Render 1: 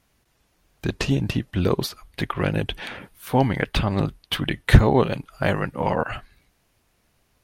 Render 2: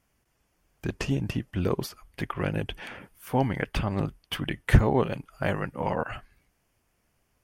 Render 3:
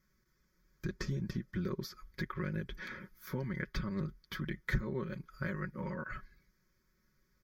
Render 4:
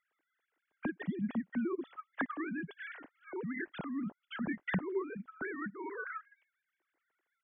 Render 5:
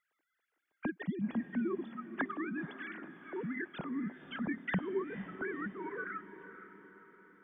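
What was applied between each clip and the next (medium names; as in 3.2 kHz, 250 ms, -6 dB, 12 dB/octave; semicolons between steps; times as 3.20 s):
peaking EQ 3.9 kHz -11.5 dB 0.27 oct; trim -5.5 dB
comb 5.4 ms, depth 71%; compression 2.5:1, threshold -32 dBFS, peak gain reduction 14.5 dB; static phaser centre 2.8 kHz, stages 6; trim -2.5 dB
formants replaced by sine waves
echo that smears into a reverb 497 ms, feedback 51%, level -12 dB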